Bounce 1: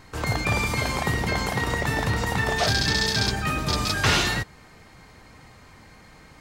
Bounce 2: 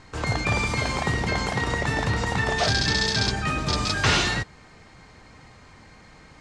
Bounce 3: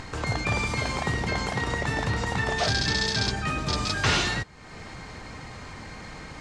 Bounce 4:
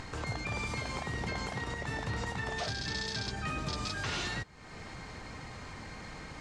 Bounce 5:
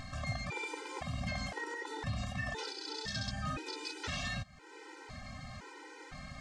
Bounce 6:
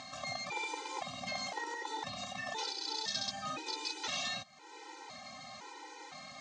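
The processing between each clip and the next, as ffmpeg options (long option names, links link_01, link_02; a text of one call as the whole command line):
ffmpeg -i in.wav -af "lowpass=frequency=8400:width=0.5412,lowpass=frequency=8400:width=1.3066" out.wav
ffmpeg -i in.wav -af "acompressor=mode=upward:threshold=-26dB:ratio=2.5,volume=-2.5dB" out.wav
ffmpeg -i in.wav -af "alimiter=limit=-21dB:level=0:latency=1:release=242,volume=-4.5dB" out.wav
ffmpeg -i in.wav -af "afftfilt=real='re*gt(sin(2*PI*0.98*pts/sr)*(1-2*mod(floor(b*sr/1024/260),2)),0)':imag='im*gt(sin(2*PI*0.98*pts/sr)*(1-2*mod(floor(b*sr/1024/260),2)),0)':win_size=1024:overlap=0.75" out.wav
ffmpeg -i in.wav -af "highpass=320,equalizer=frequency=420:width_type=q:width=4:gain=-4,equalizer=frequency=840:width_type=q:width=4:gain=6,equalizer=frequency=1600:width_type=q:width=4:gain=-7,equalizer=frequency=3900:width_type=q:width=4:gain=6,equalizer=frequency=6300:width_type=q:width=4:gain=6,lowpass=frequency=8200:width=0.5412,lowpass=frequency=8200:width=1.3066,volume=1dB" out.wav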